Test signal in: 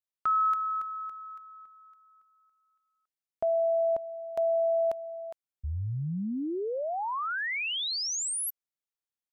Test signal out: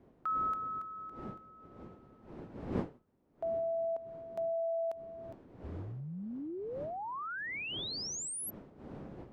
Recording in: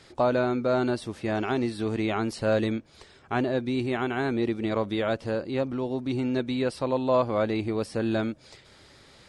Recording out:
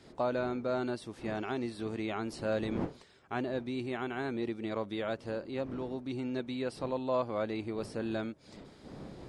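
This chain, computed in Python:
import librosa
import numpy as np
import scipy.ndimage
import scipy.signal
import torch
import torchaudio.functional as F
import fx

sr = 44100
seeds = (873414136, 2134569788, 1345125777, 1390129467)

y = fx.dmg_wind(x, sr, seeds[0], corner_hz=330.0, level_db=-39.0)
y = fx.low_shelf(y, sr, hz=66.0, db=-11.0)
y = y * 10.0 ** (-8.0 / 20.0)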